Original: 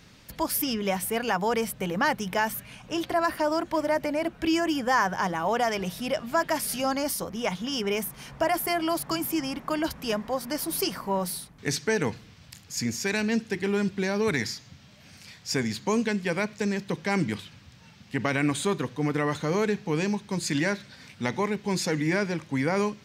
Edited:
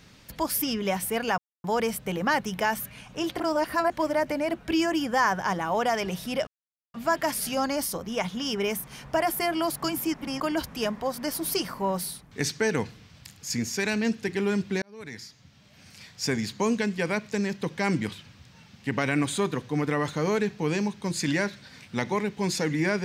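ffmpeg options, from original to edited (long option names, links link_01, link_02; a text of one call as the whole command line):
ffmpeg -i in.wav -filter_complex "[0:a]asplit=8[link_01][link_02][link_03][link_04][link_05][link_06][link_07][link_08];[link_01]atrim=end=1.38,asetpts=PTS-STARTPTS,afade=type=out:start_time=1.376:duration=0.004:curve=hsin,apad=pad_dur=0.26[link_09];[link_02]atrim=start=1.38:end=3.142,asetpts=PTS-STARTPTS,afade=type=in:duration=0.004:curve=hsin[link_10];[link_03]atrim=start=3.138:end=3.642,asetpts=PTS-STARTPTS,areverse[link_11];[link_04]atrim=start=3.638:end=6.21,asetpts=PTS-STARTPTS,afade=type=out:start_time=2.568:duration=0.004:curve=hsin,apad=pad_dur=0.47[link_12];[link_05]atrim=start=6.21:end=9.412,asetpts=PTS-STARTPTS,afade=type=in:duration=0.004:curve=hsin[link_13];[link_06]atrim=start=9.408:end=9.672,asetpts=PTS-STARTPTS,areverse[link_14];[link_07]atrim=start=9.668:end=14.09,asetpts=PTS-STARTPTS,afade=type=out:start_time=4.418:duration=0.004:curve=hsin[link_15];[link_08]atrim=start=14.09,asetpts=PTS-STARTPTS,afade=type=in:duration=1.24[link_16];[link_09][link_10]concat=n=2:v=0:a=1[link_17];[link_17][link_11]acrossfade=duration=0.004:curve1=hsin:curve2=hsin[link_18];[link_12][link_13]concat=n=2:v=0:a=1[link_19];[link_18][link_19]acrossfade=duration=0.004:curve1=hsin:curve2=hsin[link_20];[link_20][link_14]acrossfade=duration=0.004:curve1=hsin:curve2=hsin[link_21];[link_15][link_16]concat=n=2:v=0:a=1[link_22];[link_21][link_22]acrossfade=duration=0.004:curve1=hsin:curve2=hsin" out.wav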